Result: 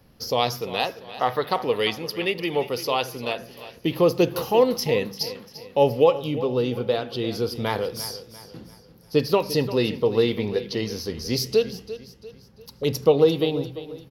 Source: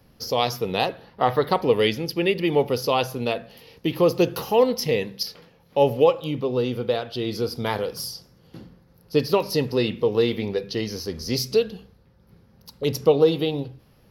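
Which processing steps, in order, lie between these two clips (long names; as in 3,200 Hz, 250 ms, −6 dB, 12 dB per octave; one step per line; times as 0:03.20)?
0:00.61–0:03.39: low-shelf EQ 480 Hz −8 dB
repeating echo 345 ms, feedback 41%, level −14.5 dB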